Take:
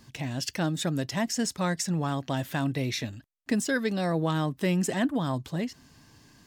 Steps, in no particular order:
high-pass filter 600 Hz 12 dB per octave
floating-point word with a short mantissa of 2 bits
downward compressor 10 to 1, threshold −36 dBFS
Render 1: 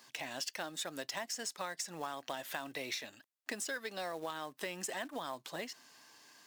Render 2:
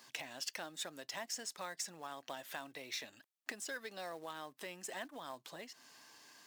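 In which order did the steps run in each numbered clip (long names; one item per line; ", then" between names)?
high-pass filter, then downward compressor, then floating-point word with a short mantissa
downward compressor, then high-pass filter, then floating-point word with a short mantissa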